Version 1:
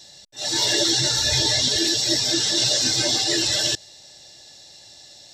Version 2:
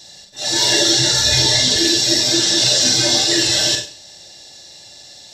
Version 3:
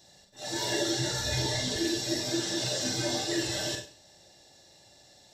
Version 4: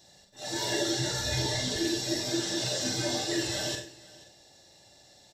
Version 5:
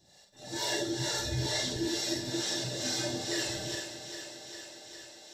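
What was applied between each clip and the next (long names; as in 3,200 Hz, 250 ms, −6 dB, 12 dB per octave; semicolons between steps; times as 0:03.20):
four-comb reverb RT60 0.4 s, combs from 32 ms, DRR 3 dB; level +4 dB
parametric band 4,600 Hz −10 dB 2.2 octaves; level −9 dB
single-tap delay 485 ms −21 dB
two-band tremolo in antiphase 2.2 Hz, depth 70%, crossover 400 Hz; feedback echo with a high-pass in the loop 404 ms, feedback 75%, high-pass 170 Hz, level −10 dB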